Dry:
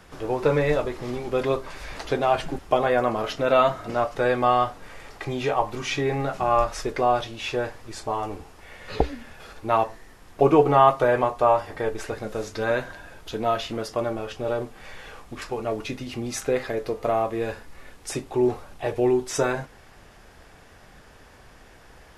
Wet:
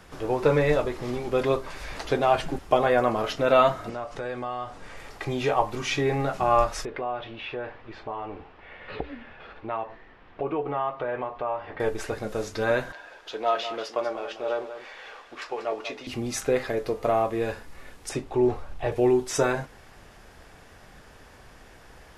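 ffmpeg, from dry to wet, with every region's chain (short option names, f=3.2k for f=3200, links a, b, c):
-filter_complex "[0:a]asettb=1/sr,asplit=3[a][b][c];[a]atrim=end=3.894[d];[b]atrim=start=3.89:end=4.97,asetpts=PTS-STARTPTS,afade=t=in:d=0.004:c=qsin,afade=t=out:st=1.076:d=0.004:c=qsin,lowpass=f=9.9k:w=0.5412,lowpass=f=9.9k:w=1.3066,acompressor=threshold=-34dB:ratio=2.5:attack=3.2:release=140:knee=1:detection=peak[e];[c]atrim=start=4.966[f];[d][e]acrossfade=d=0.004:c1=hsin:c2=qsin[g];[g][f]acrossfade=d=0.004:c1=qsin:c2=hsin,asettb=1/sr,asplit=3[h][i][j];[h]atrim=end=6.854[k];[i]atrim=start=6.85:end=11.8,asetpts=PTS-STARTPTS,afade=t=in:d=0.004:c=qsin,afade=t=out:st=4.946:d=0.004:c=qsin,lowshelf=f=190:g=-6.5,acompressor=threshold=-33dB:ratio=2:attack=3.2:release=140:knee=1:detection=peak,lowpass=f=3.2k:w=0.5412,lowpass=f=3.2k:w=1.3066[l];[j]atrim=start=11.796[m];[k][l]acrossfade=d=0.004:c1=hsin:c2=qsin[n];[n][m]acrossfade=d=0.004:c1=qsin:c2=hsin,asettb=1/sr,asplit=3[o][p][q];[o]atrim=end=12.924[r];[p]atrim=start=12.92:end=16.07,asetpts=PTS-STARTPTS,afade=t=in:d=0.004:c=qsin,afade=t=out:st=3.146:d=0.004:c=qsin,acrossover=split=360 6100:gain=0.0708 1 0.158[s][t][u];[s][t][u]amix=inputs=3:normalize=0,aecho=1:1:190:0.282,atrim=end_sample=138915[v];[q]atrim=start=16.066[w];[r][v]acrossfade=d=0.004:c1=hsin:c2=qsin[x];[x][w]acrossfade=d=0.004:c1=qsin:c2=hsin,asettb=1/sr,asplit=3[y][z][aa];[y]atrim=end=18.094[ab];[z]atrim=start=18.09:end=18.92,asetpts=PTS-STARTPTS,afade=t=in:d=0.004:c=qsin,afade=t=out:st=0.826:d=0.004:c=qsin,lowpass=f=3.8k:p=1,asubboost=boost=10.5:cutoff=100[ac];[aa]atrim=start=18.916[ad];[ab][ac]acrossfade=d=0.004:c1=hsin:c2=qsin[ae];[ae][ad]acrossfade=d=0.004:c1=qsin:c2=hsin"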